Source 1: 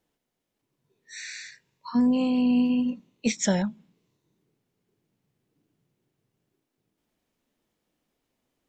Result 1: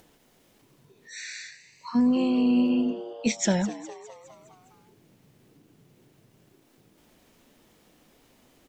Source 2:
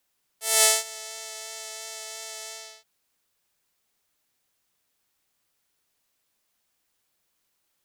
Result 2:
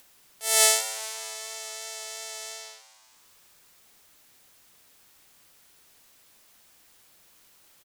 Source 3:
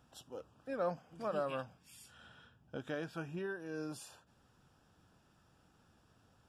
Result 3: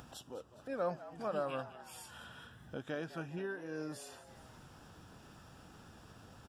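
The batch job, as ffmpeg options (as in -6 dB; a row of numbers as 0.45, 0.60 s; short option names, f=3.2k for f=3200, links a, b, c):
-filter_complex "[0:a]acompressor=mode=upward:threshold=-44dB:ratio=2.5,asplit=7[a][b][c][d][e][f][g];[b]adelay=205,afreqshift=110,volume=-15.5dB[h];[c]adelay=410,afreqshift=220,volume=-20.4dB[i];[d]adelay=615,afreqshift=330,volume=-25.3dB[j];[e]adelay=820,afreqshift=440,volume=-30.1dB[k];[f]adelay=1025,afreqshift=550,volume=-35dB[l];[g]adelay=1230,afreqshift=660,volume=-39.9dB[m];[a][h][i][j][k][l][m]amix=inputs=7:normalize=0"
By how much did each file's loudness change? -1.0, 0.0, -0.5 LU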